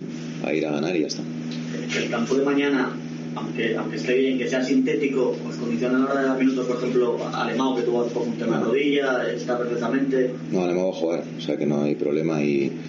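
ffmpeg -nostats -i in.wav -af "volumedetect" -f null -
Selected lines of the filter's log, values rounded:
mean_volume: -23.1 dB
max_volume: -11.4 dB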